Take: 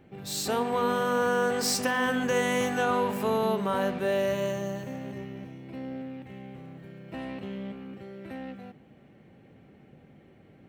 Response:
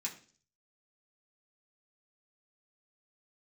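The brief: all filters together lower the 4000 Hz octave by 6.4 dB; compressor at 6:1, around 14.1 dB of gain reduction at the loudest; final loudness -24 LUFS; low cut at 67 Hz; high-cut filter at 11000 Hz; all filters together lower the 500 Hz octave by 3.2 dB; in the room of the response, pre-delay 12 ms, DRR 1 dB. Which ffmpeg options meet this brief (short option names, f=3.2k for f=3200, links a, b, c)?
-filter_complex "[0:a]highpass=67,lowpass=11k,equalizer=f=500:t=o:g=-3.5,equalizer=f=4k:t=o:g=-9,acompressor=threshold=-40dB:ratio=6,asplit=2[a][b];[1:a]atrim=start_sample=2205,adelay=12[c];[b][c]afir=irnorm=-1:irlink=0,volume=-1dB[d];[a][d]amix=inputs=2:normalize=0,volume=18dB"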